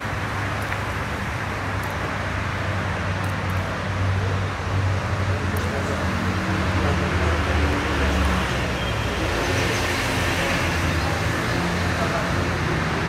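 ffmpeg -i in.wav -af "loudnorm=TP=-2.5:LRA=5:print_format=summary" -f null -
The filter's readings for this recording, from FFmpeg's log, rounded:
Input Integrated:    -23.1 LUFS
Input True Peak:      -8.3 dBTP
Input LRA:             3.5 LU
Input Threshold:     -33.1 LUFS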